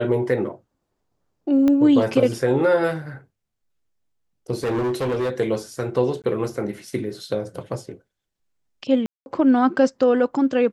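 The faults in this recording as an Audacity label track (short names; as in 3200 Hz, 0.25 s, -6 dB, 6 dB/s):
1.680000	1.680000	pop -11 dBFS
4.540000	5.300000	clipped -20 dBFS
6.220000	6.240000	gap 18 ms
9.060000	9.260000	gap 0.201 s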